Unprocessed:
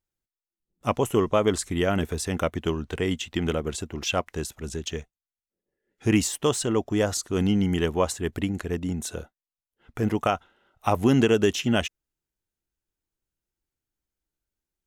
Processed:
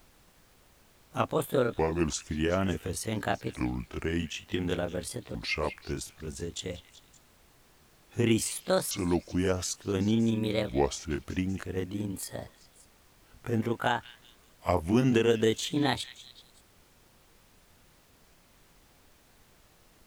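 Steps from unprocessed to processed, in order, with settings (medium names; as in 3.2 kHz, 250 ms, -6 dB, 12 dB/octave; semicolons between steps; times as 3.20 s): sawtooth pitch modulation +10 st, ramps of 1320 ms; on a send: repeats whose band climbs or falls 141 ms, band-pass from 3.8 kHz, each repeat 0.7 oct, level -12 dB; on the sum: speed mistake 45 rpm record played at 33 rpm; added noise pink -57 dBFS; trim -3.5 dB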